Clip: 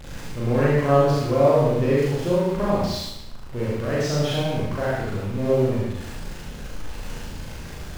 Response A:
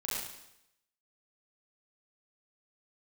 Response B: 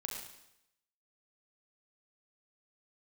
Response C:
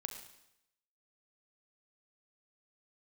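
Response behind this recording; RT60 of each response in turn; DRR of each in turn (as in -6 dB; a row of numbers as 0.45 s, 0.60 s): A; 0.80 s, 0.80 s, 0.80 s; -7.0 dB, 0.0 dB, 5.5 dB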